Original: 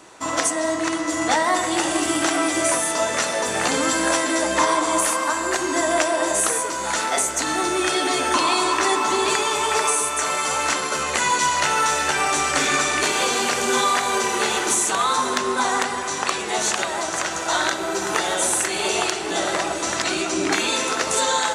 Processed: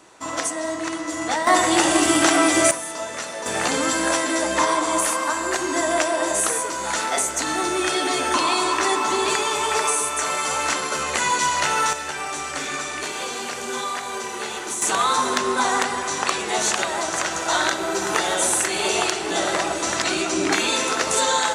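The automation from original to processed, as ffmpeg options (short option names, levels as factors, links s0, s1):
-af "asetnsamples=n=441:p=0,asendcmd='1.47 volume volume 4dB;2.71 volume volume -8dB;3.46 volume volume -1dB;11.93 volume volume -8dB;14.82 volume volume 0.5dB',volume=0.631"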